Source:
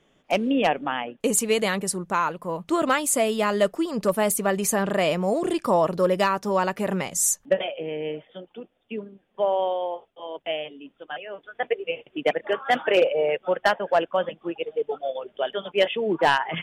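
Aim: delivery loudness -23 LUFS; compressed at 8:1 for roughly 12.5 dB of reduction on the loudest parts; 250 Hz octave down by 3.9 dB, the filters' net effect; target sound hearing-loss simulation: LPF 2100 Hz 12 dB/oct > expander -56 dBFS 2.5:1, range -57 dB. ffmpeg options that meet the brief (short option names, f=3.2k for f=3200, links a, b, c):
-af "equalizer=f=250:t=o:g=-5.5,acompressor=threshold=-29dB:ratio=8,lowpass=2.1k,agate=range=-57dB:threshold=-56dB:ratio=2.5,volume=12dB"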